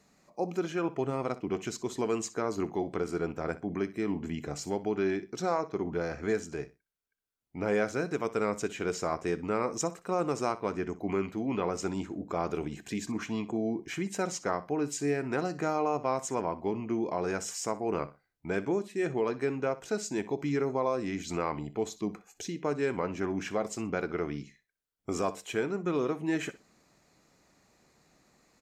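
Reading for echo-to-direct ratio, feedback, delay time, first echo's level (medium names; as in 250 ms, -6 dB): -17.0 dB, 23%, 62 ms, -17.0 dB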